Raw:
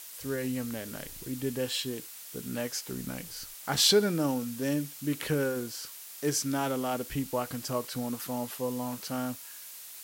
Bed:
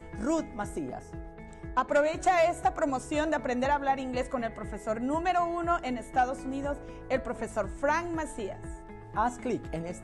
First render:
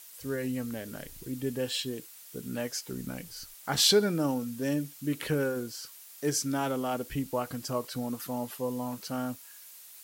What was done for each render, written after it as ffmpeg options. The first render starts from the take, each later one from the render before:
-af "afftdn=nr=6:nf=-46"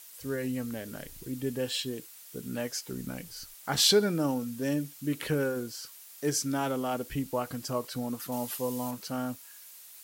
-filter_complex "[0:a]asettb=1/sr,asplit=3[a][b][c];[a]atrim=end=8.324[d];[b]atrim=start=8.32:end=8.91,asetpts=PTS-STARTPTS,afade=t=in:d=0.004:c=qsin,afade=t=out:st=0.586:d=0.004:c=qsin,highshelf=f=2.4k:g=7.5[e];[c]atrim=start=8.906[f];[d][e]acrossfade=d=0.004:c1=hsin:c2=qsin[g];[g][f]acrossfade=d=0.004:c1=qsin:c2=hsin"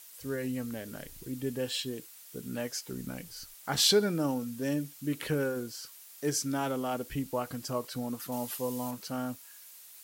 -af "volume=-1.5dB"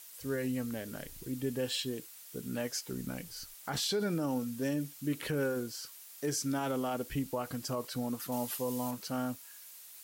-af "alimiter=level_in=0.5dB:limit=-24dB:level=0:latency=1:release=44,volume=-0.5dB"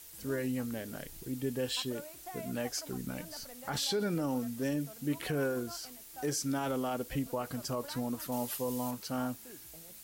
-filter_complex "[1:a]volume=-22dB[a];[0:a][a]amix=inputs=2:normalize=0"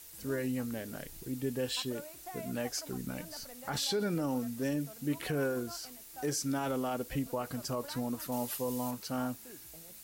-af "bandreject=f=3.2k:w=30"

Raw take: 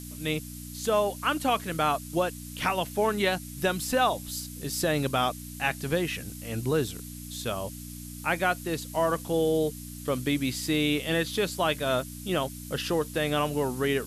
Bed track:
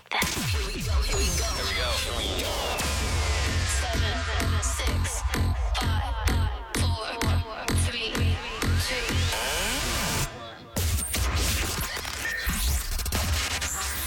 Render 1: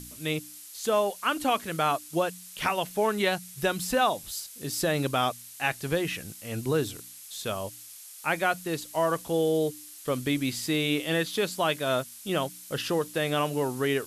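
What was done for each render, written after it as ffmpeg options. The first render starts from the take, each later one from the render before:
-af "bandreject=f=60:t=h:w=4,bandreject=f=120:t=h:w=4,bandreject=f=180:t=h:w=4,bandreject=f=240:t=h:w=4,bandreject=f=300:t=h:w=4"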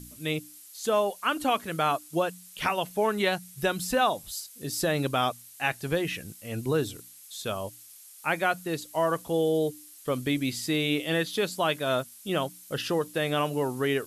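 -af "afftdn=nr=6:nf=-46"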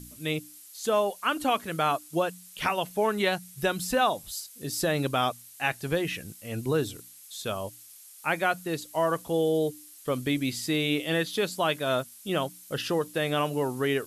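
-af anull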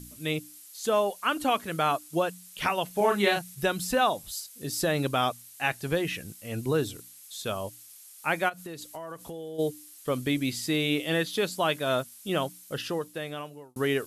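-filter_complex "[0:a]asettb=1/sr,asplit=3[a][b][c];[a]atrim=end=2.934[d];[b]atrim=start=2.93:end=3.55,asetpts=PTS-STARTPTS,afade=t=in:d=0.004:c=qsin,afade=t=out:st=0.616:d=0.004:c=qsin,asplit=2[e][f];[f]adelay=35,volume=-2dB[g];[e][g]amix=inputs=2:normalize=0,atrim=end_sample=27342[h];[c]atrim=start=3.546[i];[d][h]acrossfade=d=0.004:c1=hsin:c2=qsin[j];[j][i]acrossfade=d=0.004:c1=qsin:c2=hsin,asplit=3[k][l][m];[k]afade=t=out:st=8.48:d=0.02[n];[l]acompressor=threshold=-35dB:ratio=12:attack=3.2:release=140:knee=1:detection=peak,afade=t=in:st=8.48:d=0.02,afade=t=out:st=9.58:d=0.02[o];[m]afade=t=in:st=9.58:d=0.02[p];[n][o][p]amix=inputs=3:normalize=0,asplit=2[q][r];[q]atrim=end=13.76,asetpts=PTS-STARTPTS,afade=t=out:st=12.49:d=1.27[s];[r]atrim=start=13.76,asetpts=PTS-STARTPTS,afade=t=in:d=0.004:c=hsin[t];[s][t]concat=n=2:v=0:a=1"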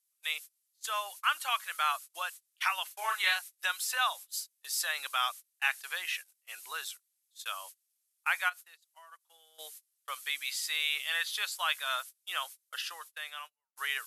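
-af "agate=range=-30dB:threshold=-37dB:ratio=16:detection=peak,highpass=f=1.1k:w=0.5412,highpass=f=1.1k:w=1.3066"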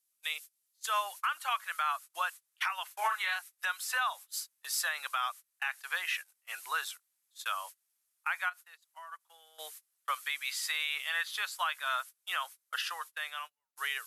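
-filter_complex "[0:a]acrossover=split=810|1800[a][b][c];[b]dynaudnorm=f=120:g=17:m=10dB[d];[a][d][c]amix=inputs=3:normalize=0,alimiter=limit=-21.5dB:level=0:latency=1:release=400"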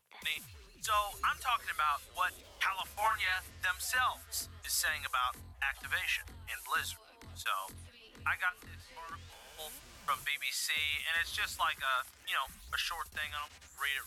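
-filter_complex "[1:a]volume=-27dB[a];[0:a][a]amix=inputs=2:normalize=0"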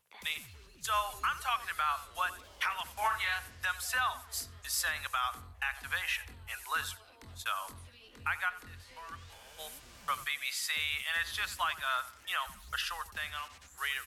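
-filter_complex "[0:a]asplit=2[a][b];[b]adelay=90,lowpass=f=2.6k:p=1,volume=-15dB,asplit=2[c][d];[d]adelay=90,lowpass=f=2.6k:p=1,volume=0.36,asplit=2[e][f];[f]adelay=90,lowpass=f=2.6k:p=1,volume=0.36[g];[a][c][e][g]amix=inputs=4:normalize=0"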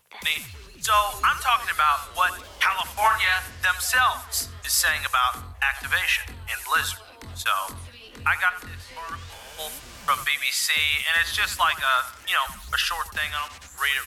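-af "volume=11.5dB"

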